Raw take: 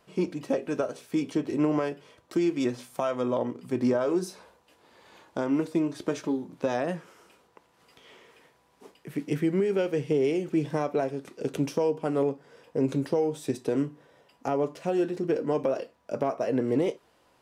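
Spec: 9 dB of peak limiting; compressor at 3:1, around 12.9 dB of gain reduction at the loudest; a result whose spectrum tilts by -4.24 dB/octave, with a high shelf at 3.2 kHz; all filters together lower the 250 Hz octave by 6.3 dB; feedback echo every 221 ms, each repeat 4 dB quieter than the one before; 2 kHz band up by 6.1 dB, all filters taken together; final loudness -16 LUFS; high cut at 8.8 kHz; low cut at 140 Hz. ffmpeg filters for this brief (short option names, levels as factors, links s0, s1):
-af "highpass=140,lowpass=8800,equalizer=f=250:t=o:g=-8.5,equalizer=f=2000:t=o:g=5.5,highshelf=f=3200:g=7.5,acompressor=threshold=0.00794:ratio=3,alimiter=level_in=2.82:limit=0.0631:level=0:latency=1,volume=0.355,aecho=1:1:221|442|663|884|1105|1326|1547|1768|1989:0.631|0.398|0.25|0.158|0.0994|0.0626|0.0394|0.0249|0.0157,volume=21.1"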